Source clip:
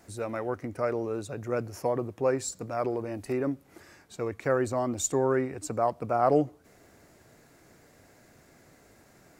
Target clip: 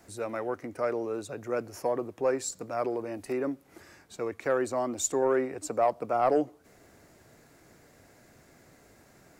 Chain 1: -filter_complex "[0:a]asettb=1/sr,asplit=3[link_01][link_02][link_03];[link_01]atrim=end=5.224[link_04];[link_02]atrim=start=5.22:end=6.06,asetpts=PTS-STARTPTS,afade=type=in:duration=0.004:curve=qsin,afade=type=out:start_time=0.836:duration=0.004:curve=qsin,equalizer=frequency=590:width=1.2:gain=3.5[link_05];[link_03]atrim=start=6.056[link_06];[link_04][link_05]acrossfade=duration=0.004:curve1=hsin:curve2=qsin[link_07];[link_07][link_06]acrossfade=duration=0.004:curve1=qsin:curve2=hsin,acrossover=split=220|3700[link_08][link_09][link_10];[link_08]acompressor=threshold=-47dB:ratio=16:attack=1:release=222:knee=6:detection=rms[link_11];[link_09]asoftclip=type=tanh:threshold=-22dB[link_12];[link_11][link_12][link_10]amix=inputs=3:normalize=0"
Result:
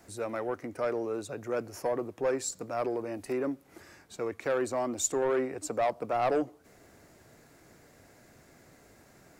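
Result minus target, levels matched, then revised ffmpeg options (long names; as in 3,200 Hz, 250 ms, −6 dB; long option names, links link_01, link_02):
soft clipping: distortion +10 dB
-filter_complex "[0:a]asettb=1/sr,asplit=3[link_01][link_02][link_03];[link_01]atrim=end=5.224[link_04];[link_02]atrim=start=5.22:end=6.06,asetpts=PTS-STARTPTS,afade=type=in:duration=0.004:curve=qsin,afade=type=out:start_time=0.836:duration=0.004:curve=qsin,equalizer=frequency=590:width=1.2:gain=3.5[link_05];[link_03]atrim=start=6.056[link_06];[link_04][link_05]acrossfade=duration=0.004:curve1=hsin:curve2=qsin[link_07];[link_07][link_06]acrossfade=duration=0.004:curve1=qsin:curve2=hsin,acrossover=split=220|3700[link_08][link_09][link_10];[link_08]acompressor=threshold=-47dB:ratio=16:attack=1:release=222:knee=6:detection=rms[link_11];[link_09]asoftclip=type=tanh:threshold=-14dB[link_12];[link_11][link_12][link_10]amix=inputs=3:normalize=0"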